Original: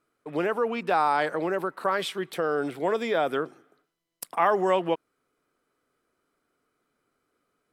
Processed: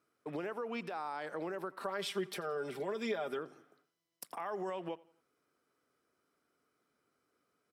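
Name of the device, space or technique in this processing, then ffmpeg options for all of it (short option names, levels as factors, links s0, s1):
broadcast voice chain: -filter_complex "[0:a]highpass=72,deesser=0.5,acompressor=threshold=0.0447:ratio=3,equalizer=f=5400:t=o:w=0.24:g=6,alimiter=level_in=1.33:limit=0.0631:level=0:latency=1:release=232,volume=0.75,asettb=1/sr,asplit=3[s0][s1][s2];[s0]atrim=end=1.804[s3];[s1]atrim=start=1.8:end=3.39,asetpts=PTS-STARTPTS,afade=t=in:d=0.004:c=qsin,afade=t=out:st=1.586:d=0.004:c=qsin,aecho=1:1:5:0.78,atrim=end_sample=70119[s4];[s2]atrim=start=3.386[s5];[s3][s4]acrossfade=d=0.004:c1=hsin:c2=qsin[s6];[s6][s5]acrossfade=d=0.004:c1=qsin:c2=hsin,aecho=1:1:87|174|261:0.0794|0.0326|0.0134,volume=0.631"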